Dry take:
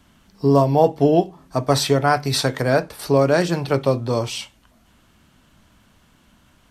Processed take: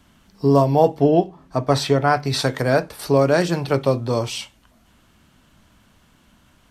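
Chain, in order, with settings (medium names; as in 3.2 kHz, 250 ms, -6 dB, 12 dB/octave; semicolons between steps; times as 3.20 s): 0.99–2.39 s: treble shelf 5 kHz -> 8.1 kHz -11 dB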